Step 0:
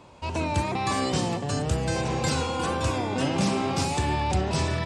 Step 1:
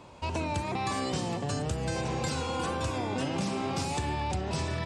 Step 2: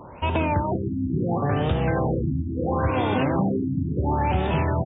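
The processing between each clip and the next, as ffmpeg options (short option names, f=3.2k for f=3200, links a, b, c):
-af "acompressor=threshold=-28dB:ratio=6"
-af "aecho=1:1:479:0.316,afftfilt=real='re*lt(b*sr/1024,320*pow(3800/320,0.5+0.5*sin(2*PI*0.73*pts/sr)))':imag='im*lt(b*sr/1024,320*pow(3800/320,0.5+0.5*sin(2*PI*0.73*pts/sr)))':win_size=1024:overlap=0.75,volume=9dB"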